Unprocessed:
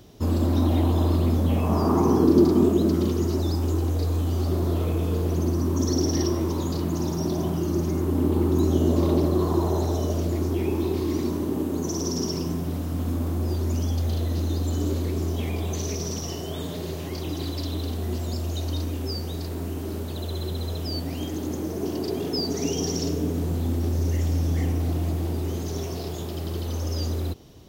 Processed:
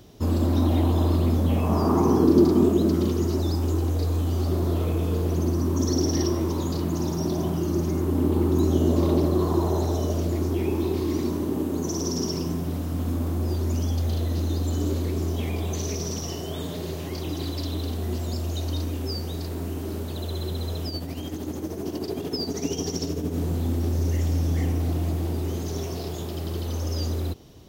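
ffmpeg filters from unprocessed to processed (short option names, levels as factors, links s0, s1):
-filter_complex "[0:a]asettb=1/sr,asplit=3[s0][s1][s2];[s0]atrim=end=20.884[s3];[s1]atrim=start=20.88:end=23.36,asetpts=PTS-STARTPTS,afade=t=in:d=0.004:c=qsin,afade=t=out:st=2.476:d=0.004:c=qsin,tremolo=f=13:d=0.54[s4];[s2]atrim=start=23.356[s5];[s3][s4]acrossfade=d=0.004:c1=hsin:c2=qsin[s6];[s6][s5]acrossfade=d=0.004:c1=qsin:c2=hsin"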